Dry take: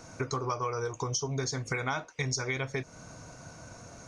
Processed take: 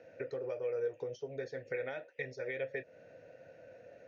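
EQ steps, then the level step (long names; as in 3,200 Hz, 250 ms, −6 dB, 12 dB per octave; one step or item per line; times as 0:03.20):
Gaussian smoothing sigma 1.8 samples
formant filter e
parametric band 96 Hz +5.5 dB 1.2 octaves
+6.0 dB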